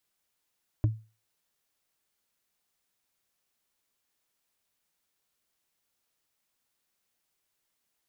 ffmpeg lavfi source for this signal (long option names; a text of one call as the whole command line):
ffmpeg -f lavfi -i "aevalsrc='0.133*pow(10,-3*t/0.32)*sin(2*PI*110*t)+0.0501*pow(10,-3*t/0.095)*sin(2*PI*303.3*t)+0.0188*pow(10,-3*t/0.042)*sin(2*PI*594.4*t)+0.00708*pow(10,-3*t/0.023)*sin(2*PI*982.6*t)+0.00266*pow(10,-3*t/0.014)*sin(2*PI*1467.4*t)':duration=0.45:sample_rate=44100" out.wav